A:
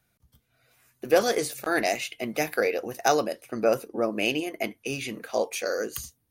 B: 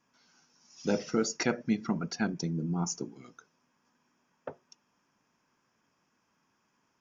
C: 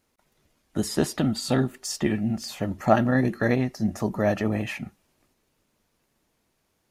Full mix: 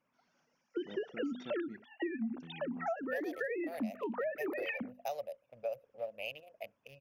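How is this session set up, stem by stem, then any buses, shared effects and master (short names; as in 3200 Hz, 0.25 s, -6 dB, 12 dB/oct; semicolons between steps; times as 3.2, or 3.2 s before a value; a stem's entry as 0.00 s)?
-18.5 dB, 2.00 s, no send, Wiener smoothing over 41 samples; EQ curve 120 Hz 0 dB, 350 Hz -23 dB, 560 Hz +12 dB, 1500 Hz -11 dB, 2500 Hz +7 dB, 8400 Hz -8 dB, 13000 Hz +12 dB
-7.0 dB, 0.00 s, muted 1.85–2.4, no send, high shelf 2100 Hz -11.5 dB; auto duck -12 dB, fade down 0.20 s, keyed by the third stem
-3.5 dB, 0.00 s, no send, sine-wave speech; notches 50/100/150/200/250 Hz; compressor 2:1, threshold -25 dBFS, peak gain reduction 8.5 dB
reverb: off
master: compressor 10:1, threshold -33 dBFS, peak gain reduction 12.5 dB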